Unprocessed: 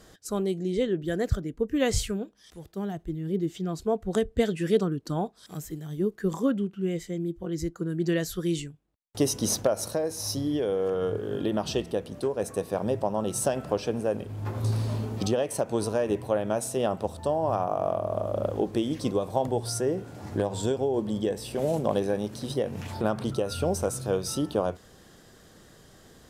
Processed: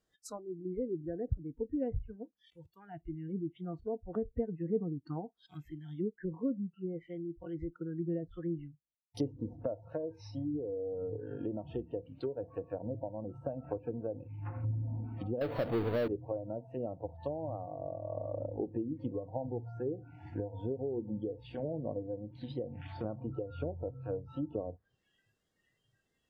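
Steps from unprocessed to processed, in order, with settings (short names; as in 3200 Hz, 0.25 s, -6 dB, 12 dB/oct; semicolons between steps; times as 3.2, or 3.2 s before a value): treble ducked by the level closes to 500 Hz, closed at -23.5 dBFS; 15.41–16.08 power-law curve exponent 0.5; spectral noise reduction 22 dB; gain -7.5 dB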